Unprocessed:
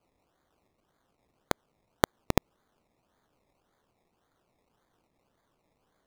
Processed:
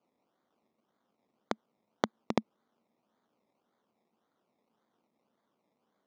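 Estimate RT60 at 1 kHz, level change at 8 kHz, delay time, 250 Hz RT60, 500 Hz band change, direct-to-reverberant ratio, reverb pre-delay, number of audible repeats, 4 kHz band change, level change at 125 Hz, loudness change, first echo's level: none, -12.5 dB, none, none, -4.0 dB, none, none, none, -6.5 dB, -10.5 dB, -4.5 dB, none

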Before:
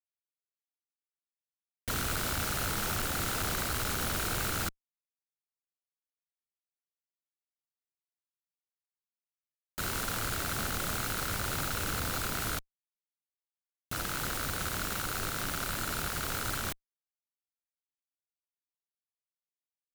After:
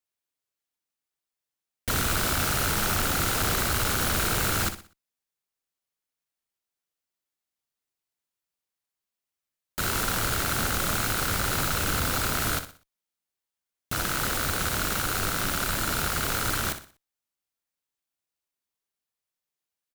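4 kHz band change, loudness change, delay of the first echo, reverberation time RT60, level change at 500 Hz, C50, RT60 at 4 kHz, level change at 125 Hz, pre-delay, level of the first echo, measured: +7.0 dB, +7.0 dB, 61 ms, none, +7.0 dB, none, none, +7.0 dB, none, -10.5 dB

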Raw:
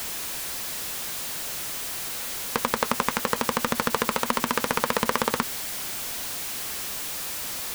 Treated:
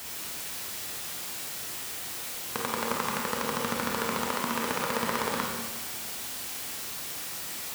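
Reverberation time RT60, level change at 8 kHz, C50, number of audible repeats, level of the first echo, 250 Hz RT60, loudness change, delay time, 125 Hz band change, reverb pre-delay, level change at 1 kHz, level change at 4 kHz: 1.3 s, -4.5 dB, 0.5 dB, none, none, 1.3 s, -4.5 dB, none, -3.5 dB, 26 ms, -4.5 dB, -4.0 dB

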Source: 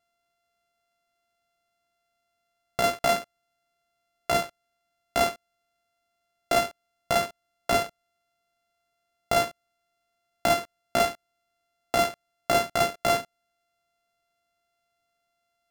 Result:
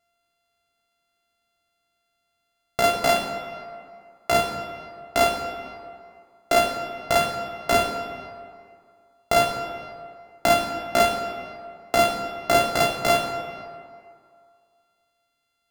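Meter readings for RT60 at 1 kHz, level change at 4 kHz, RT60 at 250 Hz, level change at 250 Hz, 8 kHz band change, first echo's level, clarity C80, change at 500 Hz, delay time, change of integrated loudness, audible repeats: 2.3 s, +4.5 dB, 2.0 s, +4.5 dB, +3.0 dB, none, 6.5 dB, +4.5 dB, none, +3.5 dB, none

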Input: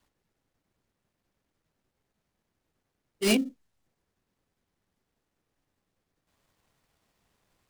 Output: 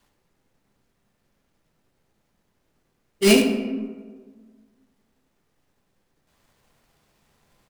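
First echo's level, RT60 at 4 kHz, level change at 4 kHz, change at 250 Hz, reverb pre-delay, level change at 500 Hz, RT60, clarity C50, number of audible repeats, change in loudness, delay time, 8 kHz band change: -8.5 dB, 0.75 s, +7.5 dB, +8.5 dB, 4 ms, +11.0 dB, 1.5 s, 4.5 dB, 1, +6.5 dB, 73 ms, +7.5 dB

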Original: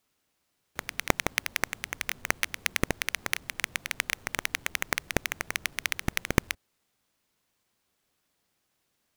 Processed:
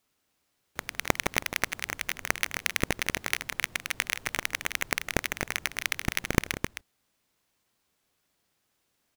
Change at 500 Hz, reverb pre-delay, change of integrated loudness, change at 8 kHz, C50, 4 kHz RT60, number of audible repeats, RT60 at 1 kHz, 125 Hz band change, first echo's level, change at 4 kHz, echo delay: +1.0 dB, none, +0.5 dB, +0.5 dB, none, none, 2, none, +0.5 dB, -15.5 dB, +0.5 dB, 0.158 s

